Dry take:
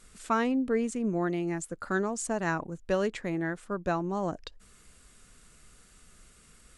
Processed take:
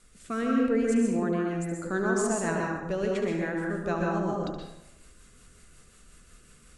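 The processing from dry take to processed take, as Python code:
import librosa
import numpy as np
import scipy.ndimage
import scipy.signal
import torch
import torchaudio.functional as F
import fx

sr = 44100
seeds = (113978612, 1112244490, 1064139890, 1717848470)

y = fx.rotary_switch(x, sr, hz=0.8, then_hz=5.5, switch_at_s=3.36)
y = fx.echo_feedback(y, sr, ms=72, feedback_pct=41, wet_db=-9.5)
y = fx.rev_plate(y, sr, seeds[0], rt60_s=0.85, hf_ratio=0.5, predelay_ms=110, drr_db=-1.0)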